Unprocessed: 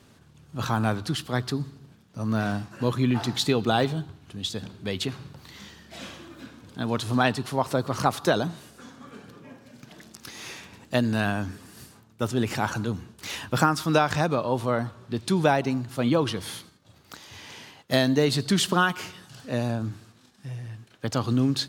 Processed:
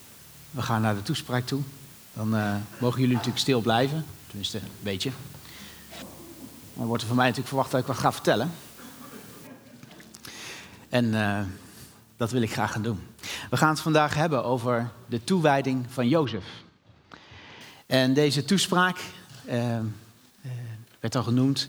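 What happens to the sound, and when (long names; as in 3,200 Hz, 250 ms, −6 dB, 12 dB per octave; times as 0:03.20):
0:06.02–0:06.95: elliptic band-stop filter 1,000–7,800 Hz
0:09.47: noise floor change −50 dB −62 dB
0:16.25–0:17.61: high-frequency loss of the air 210 metres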